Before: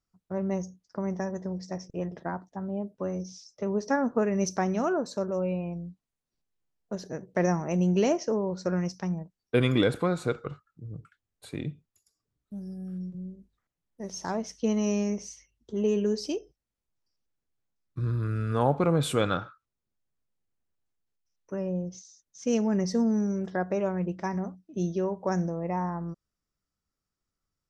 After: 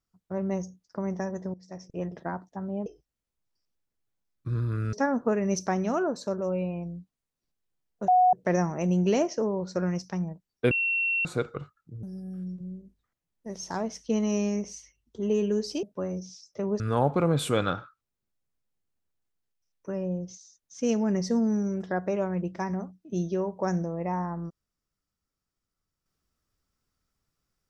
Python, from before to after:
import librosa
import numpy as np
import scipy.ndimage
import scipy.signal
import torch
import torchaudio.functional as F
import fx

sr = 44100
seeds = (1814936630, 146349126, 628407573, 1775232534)

y = fx.edit(x, sr, fx.fade_in_from(start_s=1.54, length_s=0.49, floor_db=-19.0),
    fx.swap(start_s=2.86, length_s=0.97, other_s=16.37, other_length_s=2.07),
    fx.bleep(start_s=6.98, length_s=0.25, hz=733.0, db=-16.0),
    fx.bleep(start_s=9.61, length_s=0.54, hz=2720.0, db=-23.5),
    fx.cut(start_s=10.93, length_s=1.64), tone=tone)